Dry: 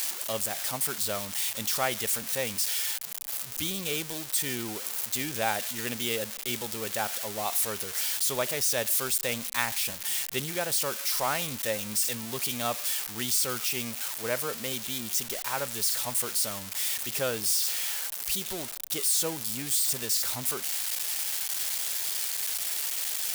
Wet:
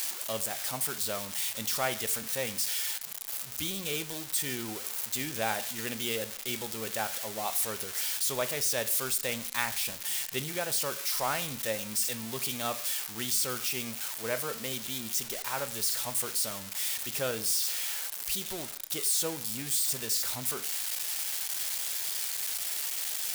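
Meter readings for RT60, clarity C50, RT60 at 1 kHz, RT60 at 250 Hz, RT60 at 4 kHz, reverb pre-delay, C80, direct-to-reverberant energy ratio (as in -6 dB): 0.50 s, 16.5 dB, 0.50 s, 0.50 s, 0.50 s, 5 ms, 20.5 dB, 11.0 dB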